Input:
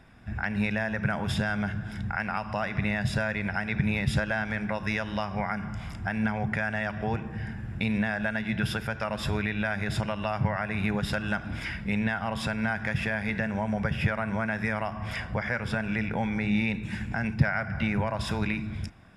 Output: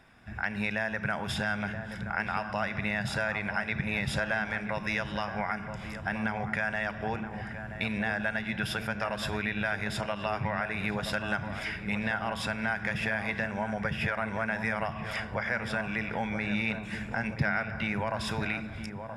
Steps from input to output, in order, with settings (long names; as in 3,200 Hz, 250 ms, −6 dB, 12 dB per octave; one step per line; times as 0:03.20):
low-shelf EQ 310 Hz −9 dB
feedback echo with a low-pass in the loop 975 ms, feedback 56%, low-pass 1,100 Hz, level −7.5 dB